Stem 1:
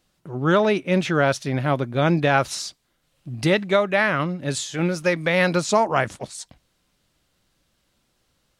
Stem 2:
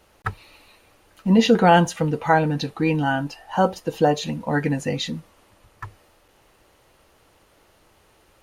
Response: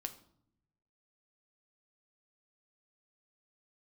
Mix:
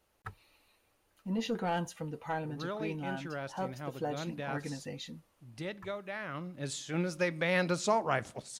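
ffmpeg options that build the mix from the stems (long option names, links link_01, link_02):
-filter_complex "[0:a]adelay=2150,volume=-12.5dB,afade=type=in:start_time=6.19:duration=0.75:silence=0.298538,asplit=2[link_01][link_02];[link_02]volume=-7dB[link_03];[1:a]highshelf=frequency=10000:gain=7.5,asoftclip=type=tanh:threshold=-6.5dB,volume=-17dB[link_04];[2:a]atrim=start_sample=2205[link_05];[link_03][link_05]afir=irnorm=-1:irlink=0[link_06];[link_01][link_04][link_06]amix=inputs=3:normalize=0"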